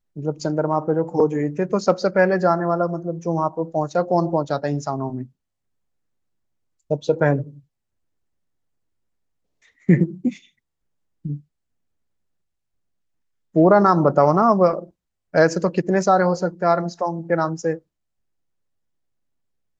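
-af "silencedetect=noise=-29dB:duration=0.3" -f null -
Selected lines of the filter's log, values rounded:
silence_start: 5.23
silence_end: 6.91 | silence_duration: 1.67
silence_start: 7.43
silence_end: 9.89 | silence_duration: 2.46
silence_start: 10.32
silence_end: 11.25 | silence_duration: 0.93
silence_start: 11.36
silence_end: 13.56 | silence_duration: 2.19
silence_start: 14.84
silence_end: 15.35 | silence_duration: 0.51
silence_start: 17.76
silence_end: 19.79 | silence_duration: 2.03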